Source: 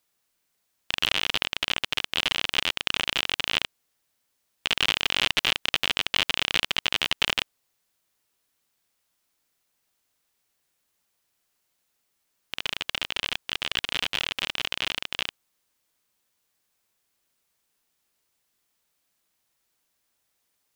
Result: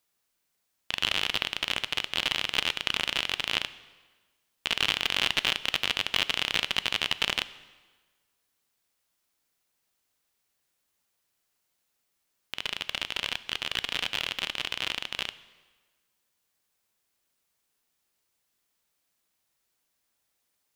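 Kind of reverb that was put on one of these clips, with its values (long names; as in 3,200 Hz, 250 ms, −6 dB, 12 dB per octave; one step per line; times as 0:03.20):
dense smooth reverb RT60 1.4 s, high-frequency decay 0.85×, DRR 14.5 dB
level −2.5 dB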